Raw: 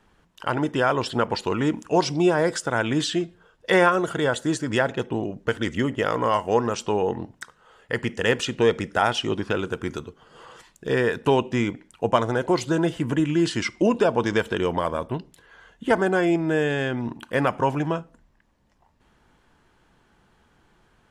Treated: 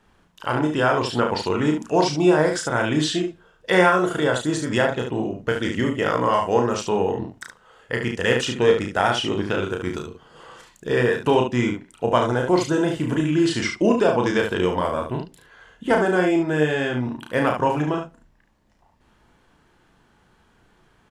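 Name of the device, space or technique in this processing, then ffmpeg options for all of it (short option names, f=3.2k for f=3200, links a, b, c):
slapback doubling: -filter_complex "[0:a]asplit=3[a][b][c];[b]adelay=33,volume=-4dB[d];[c]adelay=72,volume=-6.5dB[e];[a][d][e]amix=inputs=3:normalize=0"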